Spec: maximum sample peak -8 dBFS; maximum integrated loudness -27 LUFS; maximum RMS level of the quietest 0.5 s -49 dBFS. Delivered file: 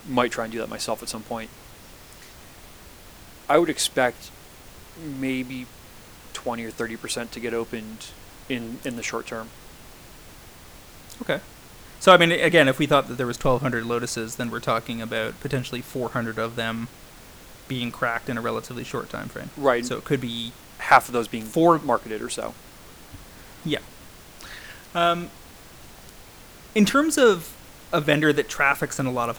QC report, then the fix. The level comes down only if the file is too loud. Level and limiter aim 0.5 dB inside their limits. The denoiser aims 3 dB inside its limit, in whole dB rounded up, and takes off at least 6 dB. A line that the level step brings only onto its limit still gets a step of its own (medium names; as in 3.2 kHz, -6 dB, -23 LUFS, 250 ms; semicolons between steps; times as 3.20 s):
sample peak -1.5 dBFS: fail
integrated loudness -23.5 LUFS: fail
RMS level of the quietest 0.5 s -46 dBFS: fail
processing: trim -4 dB; peak limiter -8.5 dBFS